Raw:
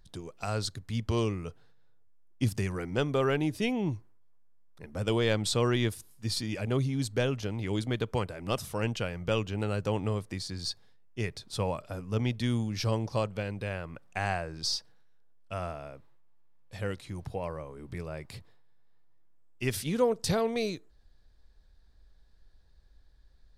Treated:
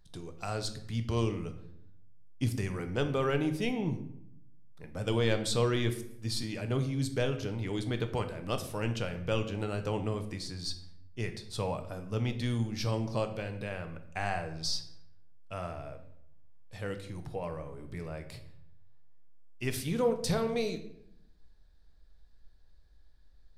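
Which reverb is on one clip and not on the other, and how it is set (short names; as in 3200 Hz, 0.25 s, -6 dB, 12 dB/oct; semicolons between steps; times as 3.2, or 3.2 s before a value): shoebox room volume 170 m³, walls mixed, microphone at 0.44 m; gain -3 dB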